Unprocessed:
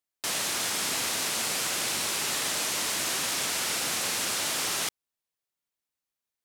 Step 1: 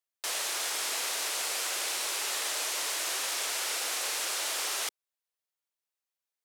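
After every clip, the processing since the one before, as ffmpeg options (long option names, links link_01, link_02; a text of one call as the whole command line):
ffmpeg -i in.wav -af "highpass=frequency=390:width=0.5412,highpass=frequency=390:width=1.3066,volume=-3dB" out.wav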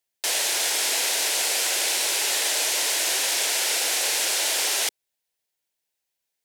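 ffmpeg -i in.wav -af "equalizer=frequency=1200:width=3.8:gain=-11.5,volume=9dB" out.wav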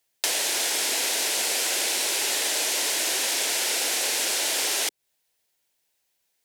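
ffmpeg -i in.wav -filter_complex "[0:a]acrossover=split=300[link_01][link_02];[link_02]acompressor=threshold=-31dB:ratio=5[link_03];[link_01][link_03]amix=inputs=2:normalize=0,volume=7.5dB" out.wav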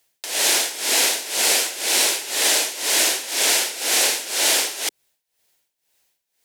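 ffmpeg -i in.wav -af "tremolo=f=2:d=0.84,volume=8.5dB" out.wav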